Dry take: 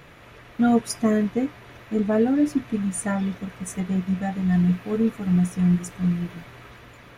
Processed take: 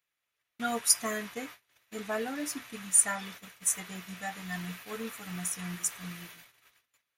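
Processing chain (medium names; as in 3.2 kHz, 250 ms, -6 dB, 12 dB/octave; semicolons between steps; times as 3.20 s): pre-emphasis filter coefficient 0.97; gate -55 dBFS, range -32 dB; dynamic bell 1.1 kHz, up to +6 dB, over -59 dBFS, Q 0.72; trim +7.5 dB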